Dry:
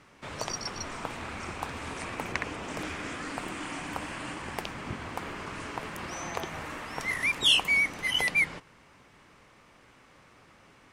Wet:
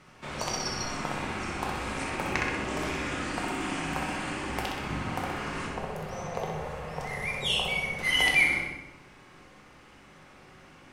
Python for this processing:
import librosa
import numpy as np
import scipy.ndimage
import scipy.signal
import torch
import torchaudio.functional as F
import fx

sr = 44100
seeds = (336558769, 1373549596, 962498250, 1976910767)

y = fx.curve_eq(x, sr, hz=(200.0, 310.0, 450.0, 1500.0), db=(0, -18, 5, -9), at=(5.66, 7.99))
y = fx.echo_feedback(y, sr, ms=63, feedback_pct=55, wet_db=-5.5)
y = fx.room_shoebox(y, sr, seeds[0], volume_m3=260.0, walls='mixed', distance_m=0.97)